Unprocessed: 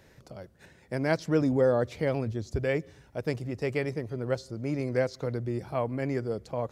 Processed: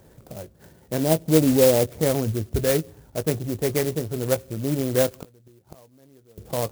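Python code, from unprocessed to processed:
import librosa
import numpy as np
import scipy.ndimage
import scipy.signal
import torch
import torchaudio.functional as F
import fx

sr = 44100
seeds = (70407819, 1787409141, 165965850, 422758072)

y = fx.wiener(x, sr, points=15)
y = fx.steep_lowpass(y, sr, hz=900.0, slope=36, at=(0.98, 1.9))
y = fx.gate_flip(y, sr, shuts_db=-27.0, range_db=-29, at=(5.07, 6.38))
y = fx.doubler(y, sr, ms=19.0, db=-11.5)
y = fx.clock_jitter(y, sr, seeds[0], jitter_ms=0.1)
y = y * 10.0 ** (6.5 / 20.0)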